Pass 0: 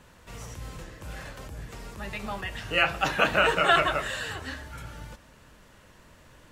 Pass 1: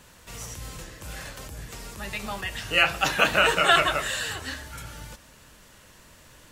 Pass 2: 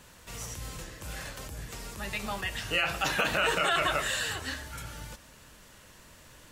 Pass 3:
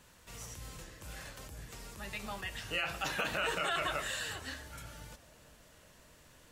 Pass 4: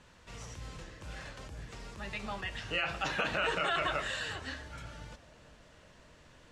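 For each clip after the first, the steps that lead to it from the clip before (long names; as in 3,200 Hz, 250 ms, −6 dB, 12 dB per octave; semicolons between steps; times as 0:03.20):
high-shelf EQ 3,300 Hz +10.5 dB
brickwall limiter −15.5 dBFS, peak gain reduction 10 dB; level −1.5 dB
bucket-brigade delay 375 ms, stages 2,048, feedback 80%, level −23 dB; level −7 dB
high-frequency loss of the air 94 metres; level +3 dB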